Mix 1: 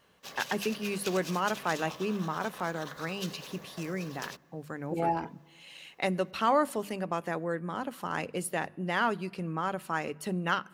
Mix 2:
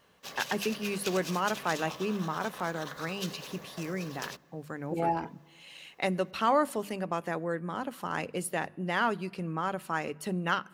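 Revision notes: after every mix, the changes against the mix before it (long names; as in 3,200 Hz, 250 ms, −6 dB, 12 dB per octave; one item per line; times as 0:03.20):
background: send on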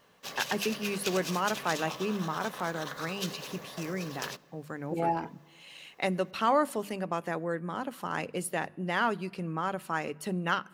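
background: send +9.0 dB
master: add parametric band 69 Hz −8 dB 0.37 octaves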